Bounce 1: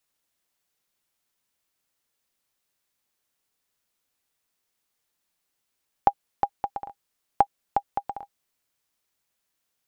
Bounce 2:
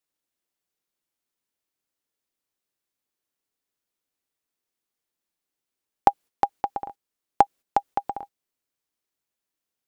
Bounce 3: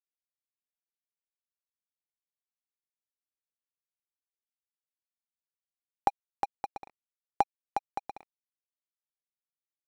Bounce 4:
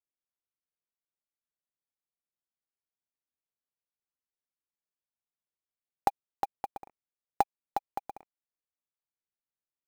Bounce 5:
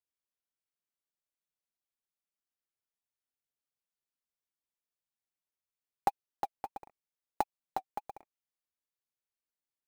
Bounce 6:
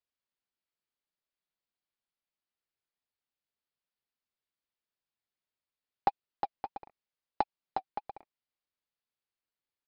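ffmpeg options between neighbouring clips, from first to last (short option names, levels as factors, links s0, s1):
-af "agate=range=0.316:threshold=0.00631:ratio=16:detection=peak,equalizer=f=330:w=1.1:g=6,volume=1.26"
-af "aeval=exprs='sgn(val(0))*max(abs(val(0))-0.0224,0)':c=same,volume=0.376"
-af "adynamicsmooth=sensitivity=1.5:basefreq=1800,acrusher=bits=5:mode=log:mix=0:aa=0.000001"
-af "flanger=delay=1:depth=7.9:regen=-32:speed=1.6:shape=triangular,volume=1.12"
-af "aresample=11025,aresample=44100,volume=1.19"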